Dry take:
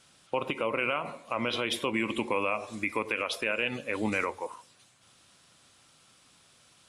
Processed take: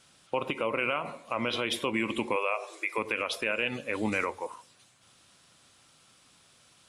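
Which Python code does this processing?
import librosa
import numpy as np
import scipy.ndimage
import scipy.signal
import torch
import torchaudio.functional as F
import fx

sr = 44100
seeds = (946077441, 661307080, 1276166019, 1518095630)

y = fx.brickwall_highpass(x, sr, low_hz=330.0, at=(2.36, 2.98))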